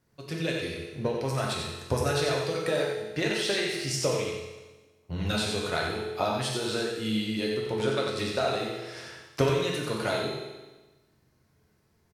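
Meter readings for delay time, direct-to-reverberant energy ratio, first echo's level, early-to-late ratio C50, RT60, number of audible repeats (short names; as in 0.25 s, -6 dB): 91 ms, -3.5 dB, -4.5 dB, 0.0 dB, 1.2 s, 1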